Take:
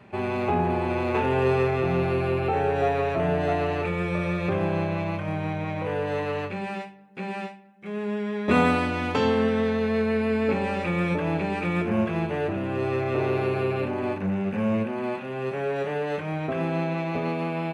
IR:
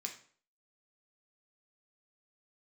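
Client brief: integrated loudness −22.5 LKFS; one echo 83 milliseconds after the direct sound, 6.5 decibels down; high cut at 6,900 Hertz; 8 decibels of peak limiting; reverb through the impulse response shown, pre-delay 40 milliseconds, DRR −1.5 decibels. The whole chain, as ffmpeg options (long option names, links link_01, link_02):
-filter_complex "[0:a]lowpass=6900,alimiter=limit=-17dB:level=0:latency=1,aecho=1:1:83:0.473,asplit=2[link_01][link_02];[1:a]atrim=start_sample=2205,adelay=40[link_03];[link_02][link_03]afir=irnorm=-1:irlink=0,volume=3dB[link_04];[link_01][link_04]amix=inputs=2:normalize=0,volume=0.5dB"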